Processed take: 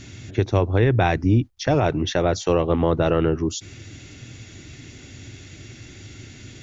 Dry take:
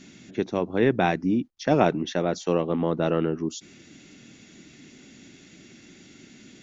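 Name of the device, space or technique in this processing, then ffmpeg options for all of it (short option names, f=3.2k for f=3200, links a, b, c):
car stereo with a boomy subwoofer: -af "lowshelf=f=140:t=q:w=3:g=10.5,alimiter=limit=-15dB:level=0:latency=1:release=106,volume=7dB"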